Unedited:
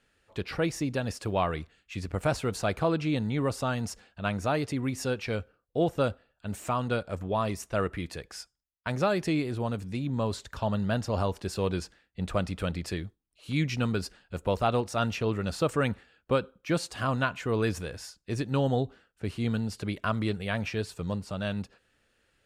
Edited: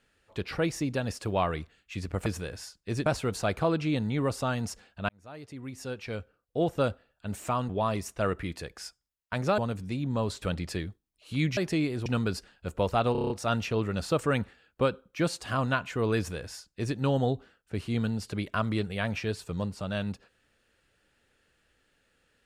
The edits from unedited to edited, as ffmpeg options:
-filter_complex "[0:a]asplit=15[a][b][c][d][e][f][g][h][i][j][k][l][m][n][o];[a]atrim=end=2.262[p];[b]atrim=start=17.668:end=18.472[q];[c]atrim=start=2.258:end=4.29,asetpts=PTS-STARTPTS,afade=t=out:st=2.028:d=0.004:c=hsin[r];[d]atrim=start=4.29:end=6.892,asetpts=PTS-STARTPTS,afade=t=in:d=1.75[s];[e]atrim=start=7.228:end=9.122[t];[f]atrim=start=9.608:end=10.452[u];[g]atrim=start=12.588:end=13.742[v];[h]atrim=start=9.118:end=9.612[w];[i]atrim=start=13.738:end=14.832[x];[j]atrim=start=14.798:end=14.832[y];[k]atrim=start=14.798:end=14.832[z];[l]atrim=start=14.798:end=14.832[aa];[m]atrim=start=14.798:end=14.832[ab];[n]atrim=start=14.798:end=14.832[ac];[o]atrim=start=14.798[ad];[p][q]acrossfade=d=0.004:c1=hsin:c2=hsin[ae];[r][s]concat=n=2:v=0:a=1[af];[ae][af]acrossfade=d=0.004:c1=hsin:c2=hsin[ag];[ag][t]acrossfade=d=0.004:c1=hsin:c2=hsin[ah];[ah][u]acrossfade=d=0.004:c1=hsin:c2=hsin[ai];[ai][v]acrossfade=d=0.004:c1=hsin:c2=hsin[aj];[aj][w]acrossfade=d=0.004:c1=hsin:c2=hsin[ak];[ak][x]acrossfade=d=0.004:c1=hsin:c2=hsin[al];[al][y]acrossfade=d=0.004:c1=hsin:c2=hsin[am];[am][z]acrossfade=d=0.004:c1=hsin:c2=hsin[an];[an][aa]acrossfade=d=0.004:c1=hsin:c2=hsin[ao];[ao][ab]acrossfade=d=0.004:c1=hsin:c2=hsin[ap];[ap][ac]acrossfade=d=0.004:c1=hsin:c2=hsin[aq];[aq][ad]acrossfade=d=0.004:c1=hsin:c2=hsin"

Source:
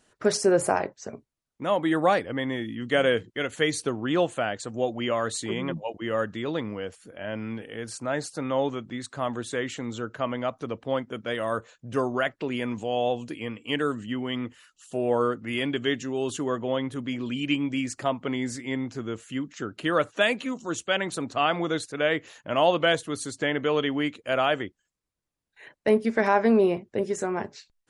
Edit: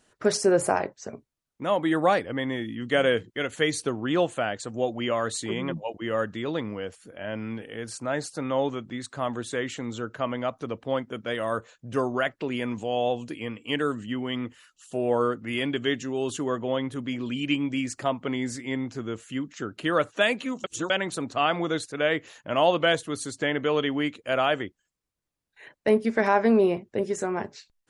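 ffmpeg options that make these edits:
-filter_complex "[0:a]asplit=3[a][b][c];[a]atrim=end=20.642[d];[b]atrim=start=20.638:end=20.902,asetpts=PTS-STARTPTS,areverse[e];[c]atrim=start=20.898[f];[d][e]acrossfade=d=0.004:c1=hsin:c2=hsin[g];[g][f]acrossfade=d=0.004:c1=hsin:c2=hsin"

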